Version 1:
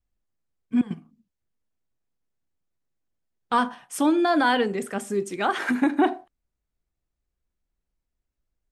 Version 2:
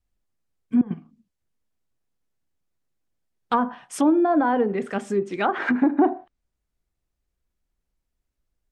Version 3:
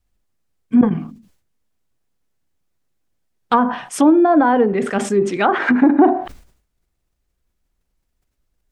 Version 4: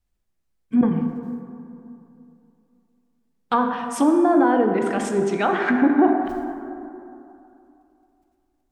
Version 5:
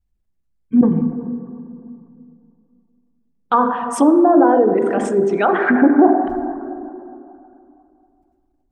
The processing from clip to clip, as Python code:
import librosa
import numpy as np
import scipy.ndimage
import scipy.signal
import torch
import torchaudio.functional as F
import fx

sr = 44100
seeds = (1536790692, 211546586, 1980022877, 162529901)

y1 = fx.env_lowpass_down(x, sr, base_hz=920.0, full_db=-18.5)
y1 = y1 * librosa.db_to_amplitude(2.5)
y2 = fx.sustainer(y1, sr, db_per_s=100.0)
y2 = y2 * librosa.db_to_amplitude(6.5)
y3 = fx.rev_plate(y2, sr, seeds[0], rt60_s=2.8, hf_ratio=0.4, predelay_ms=0, drr_db=4.5)
y3 = y3 * librosa.db_to_amplitude(-5.5)
y4 = fx.envelope_sharpen(y3, sr, power=1.5)
y4 = y4 * librosa.db_to_amplitude(5.0)